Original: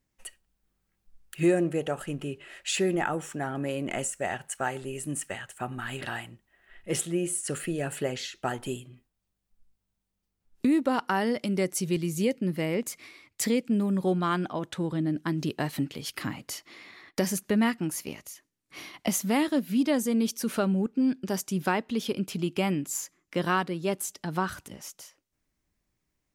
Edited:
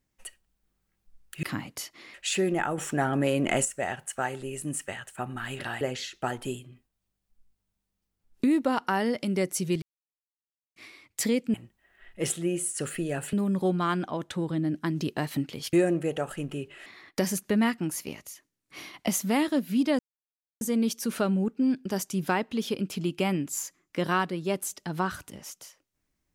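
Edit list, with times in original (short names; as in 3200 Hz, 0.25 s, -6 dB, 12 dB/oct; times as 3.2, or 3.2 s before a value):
1.43–2.56 swap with 16.15–16.86
3.2–4.07 gain +6 dB
6.23–8.02 move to 13.75
12.03–12.97 mute
19.99 insert silence 0.62 s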